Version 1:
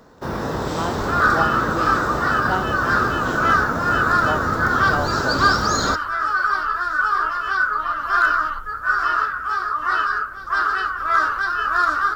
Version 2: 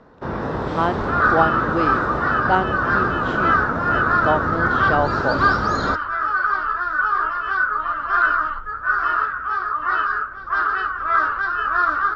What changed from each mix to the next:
speech +6.5 dB; master: add low-pass 2.7 kHz 12 dB/octave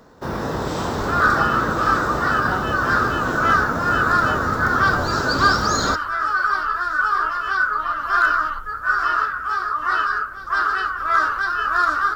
speech -11.5 dB; master: remove low-pass 2.7 kHz 12 dB/octave

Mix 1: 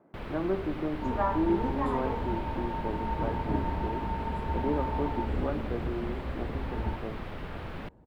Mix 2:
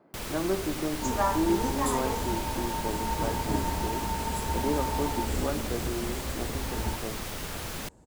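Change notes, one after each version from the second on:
master: remove distance through air 480 m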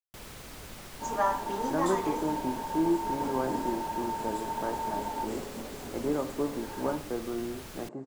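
speech: entry +1.40 s; first sound -9.0 dB; second sound: add band-pass 270–5600 Hz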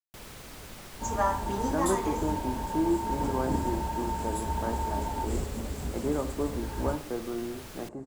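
second sound: remove band-pass 270–5600 Hz

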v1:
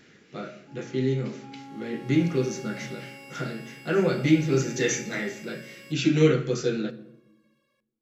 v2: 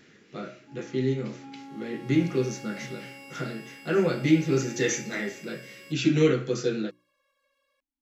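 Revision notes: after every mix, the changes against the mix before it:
reverb: off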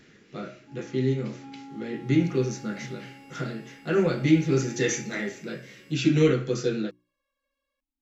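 second sound -9.5 dB; master: add bass shelf 89 Hz +9 dB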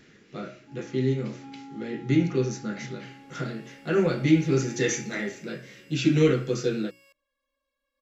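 second sound: entry +1.20 s

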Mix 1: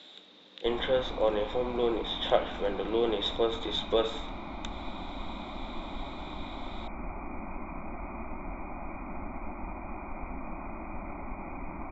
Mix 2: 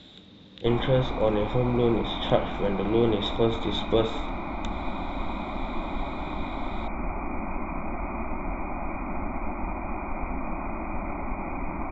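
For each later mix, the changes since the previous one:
speech: remove high-pass 460 Hz 12 dB/octave; background +7.5 dB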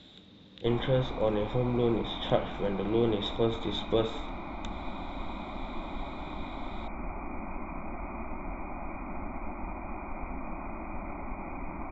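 speech -4.0 dB; background -6.5 dB

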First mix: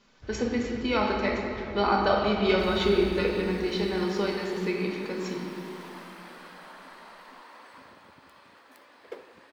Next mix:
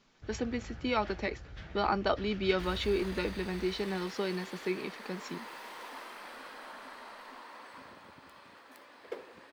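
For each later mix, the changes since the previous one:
reverb: off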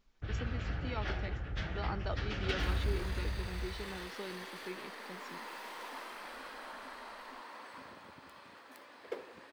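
speech -11.0 dB; first sound +8.5 dB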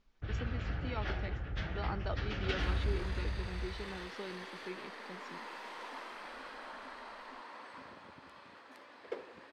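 master: add distance through air 59 m

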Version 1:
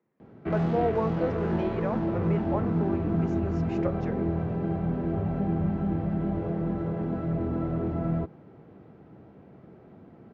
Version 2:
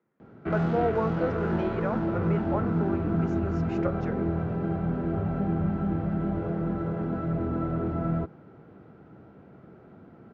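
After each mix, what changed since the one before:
master: add peaking EQ 1.4 kHz +9.5 dB 0.23 oct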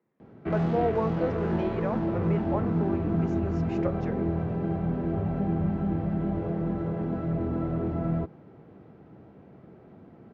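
master: add peaking EQ 1.4 kHz -9.5 dB 0.23 oct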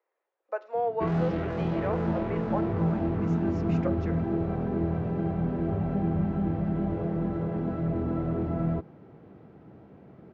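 speech: add steep high-pass 460 Hz; background: entry +0.55 s

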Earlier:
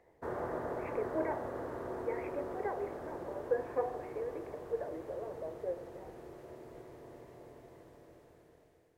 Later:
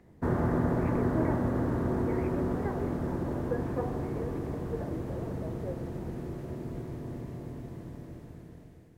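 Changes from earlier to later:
background +7.0 dB; master: add resonant low shelf 320 Hz +12 dB, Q 1.5

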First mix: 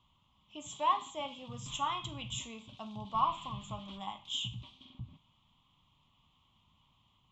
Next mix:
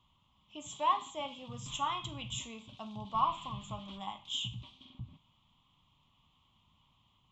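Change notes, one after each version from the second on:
no change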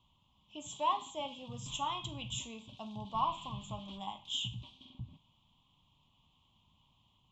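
master: add high-order bell 1.6 kHz -8.5 dB 1.1 oct

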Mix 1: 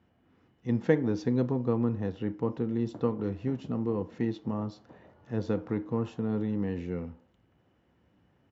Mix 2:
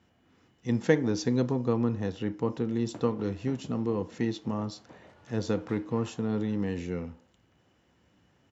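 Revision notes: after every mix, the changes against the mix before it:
background: add peaking EQ 2.7 kHz +14.5 dB 0.93 oct; master: remove tape spacing loss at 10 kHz 23 dB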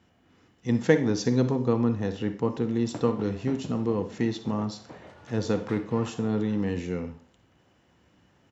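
background +6.0 dB; reverb: on, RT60 0.40 s

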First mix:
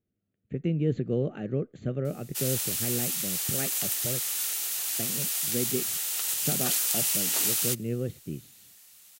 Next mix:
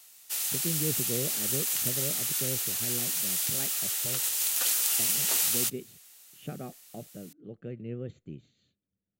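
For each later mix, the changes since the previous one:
speech -6.5 dB; background: entry -2.05 s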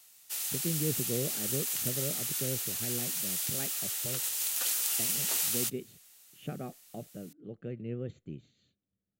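background -4.0 dB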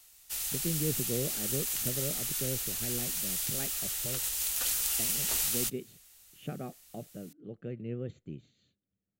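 background: remove high-pass 250 Hz 12 dB/octave

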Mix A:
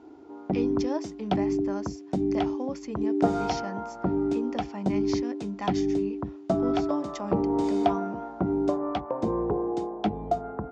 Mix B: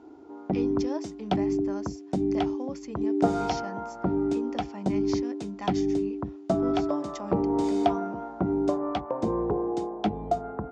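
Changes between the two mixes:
speech -3.5 dB; master: add treble shelf 7.2 kHz +6.5 dB

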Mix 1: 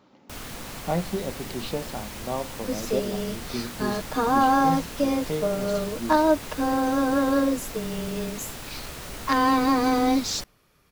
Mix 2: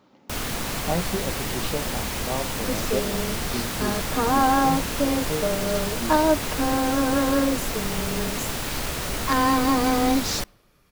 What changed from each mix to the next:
first sound +9.0 dB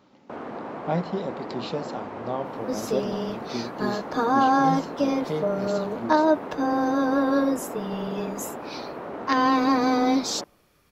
first sound: add Butterworth band-pass 520 Hz, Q 0.62

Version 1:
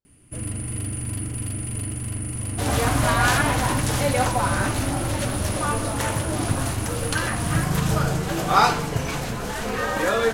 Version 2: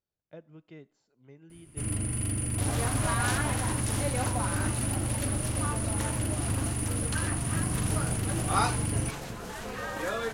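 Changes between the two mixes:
first sound: entry +1.45 s; second sound -7.5 dB; reverb: off

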